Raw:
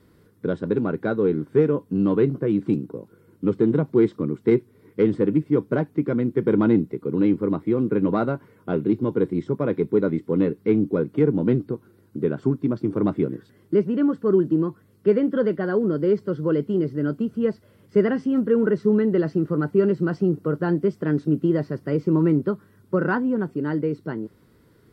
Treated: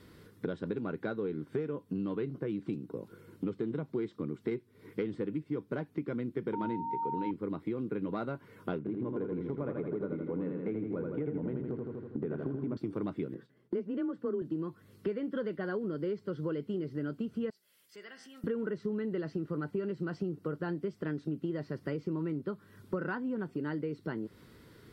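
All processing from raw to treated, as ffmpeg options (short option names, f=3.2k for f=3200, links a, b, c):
-filter_complex "[0:a]asettb=1/sr,asplit=3[a][b][c];[a]atrim=end=6.534[d];[b]atrim=start=6.53:end=7.31,asetpts=PTS-STARTPTS,afade=t=in:d=0.004:c=qsin,afade=t=out:st=0.776:d=0.004:c=qsin,bandreject=f=50:t=h:w=6,bandreject=f=100:t=h:w=6,bandreject=f=150:t=h:w=6,bandreject=f=200:t=h:w=6,bandreject=f=250:t=h:w=6,bandreject=f=300:t=h:w=6,aeval=exprs='val(0)+0.0891*sin(2*PI*920*n/s)':c=same[e];[c]atrim=start=7.306[f];[d][e]acrossfade=d=0.004:c1=hsin:c2=qsin[g];[g][f]acrossfade=d=0.004:c1=qsin:c2=hsin,asettb=1/sr,asplit=3[h][i][j];[h]atrim=end=8.784[k];[i]atrim=start=8.78:end=12.77,asetpts=PTS-STARTPTS,afade=t=in:d=0.004:c=qsin,afade=t=out:st=3.986:d=0.004:c=qsin,lowpass=1.6k,acompressor=threshold=-21dB:ratio=2.5:attack=3.2:release=140:knee=1:detection=peak,aecho=1:1:81|162|243|324|405|486|567|648:0.631|0.36|0.205|0.117|0.0666|0.038|0.0216|0.0123,atrim=end_sample=175959[l];[j]atrim=start=12.766[m];[k][l]acrossfade=d=0.004:c1=hsin:c2=qsin[n];[n][m]acrossfade=d=0.004:c1=qsin:c2=hsin,asettb=1/sr,asplit=3[o][p][q];[o]atrim=end=13.344[r];[p]atrim=start=13.34:end=14.42,asetpts=PTS-STARTPTS,afade=t=in:d=0.004:c=qsin,afade=t=out:st=1.076:d=0.004:c=qsin,highshelf=f=2.4k:g=-9.5,agate=range=-33dB:threshold=-48dB:ratio=3:release=100:detection=peak,afreqshift=24[s];[q]atrim=start=14.416[t];[r][s]acrossfade=d=0.004:c1=hsin:c2=qsin[u];[u][t]acrossfade=d=0.004:c1=qsin:c2=hsin,asettb=1/sr,asplit=3[v][w][x];[v]atrim=end=17.504[y];[w]atrim=start=17.5:end=18.44,asetpts=PTS-STARTPTS,afade=t=in:d=0.004:c=qsin,afade=t=out:st=0.936:d=0.004:c=qsin,aderivative,bandreject=f=60.83:t=h:w=4,bandreject=f=121.66:t=h:w=4,bandreject=f=182.49:t=h:w=4,bandreject=f=243.32:t=h:w=4,bandreject=f=304.15:t=h:w=4,bandreject=f=364.98:t=h:w=4,bandreject=f=425.81:t=h:w=4,bandreject=f=486.64:t=h:w=4,bandreject=f=547.47:t=h:w=4,bandreject=f=608.3:t=h:w=4,bandreject=f=669.13:t=h:w=4,bandreject=f=729.96:t=h:w=4,bandreject=f=790.79:t=h:w=4,bandreject=f=851.62:t=h:w=4,bandreject=f=912.45:t=h:w=4,bandreject=f=973.28:t=h:w=4,bandreject=f=1.03411k:t=h:w=4,bandreject=f=1.09494k:t=h:w=4,bandreject=f=1.15577k:t=h:w=4,bandreject=f=1.2166k:t=h:w=4,bandreject=f=1.27743k:t=h:w=4,bandreject=f=1.33826k:t=h:w=4,bandreject=f=1.39909k:t=h:w=4,bandreject=f=1.45992k:t=h:w=4,bandreject=f=1.52075k:t=h:w=4,bandreject=f=1.58158k:t=h:w=4,bandreject=f=1.64241k:t=h:w=4,bandreject=f=1.70324k:t=h:w=4,bandreject=f=1.76407k:t=h:w=4,bandreject=f=1.8249k:t=h:w=4,bandreject=f=1.88573k:t=h:w=4,bandreject=f=1.94656k:t=h:w=4,bandreject=f=2.00739k:t=h:w=4,bandreject=f=2.06822k:t=h:w=4,bandreject=f=2.12905k:t=h:w=4,bandreject=f=2.18988k:t=h:w=4,bandreject=f=2.25071k:t=h:w=4,bandreject=f=2.31154k:t=h:w=4,acompressor=threshold=-54dB:ratio=2:attack=3.2:release=140:knee=1:detection=peak[z];[x]atrim=start=18.436[aa];[y][z]acrossfade=d=0.004:c1=hsin:c2=qsin[ab];[ab][aa]acrossfade=d=0.004:c1=qsin:c2=hsin,equalizer=f=3.3k:t=o:w=2.2:g=6.5,acompressor=threshold=-33dB:ratio=6"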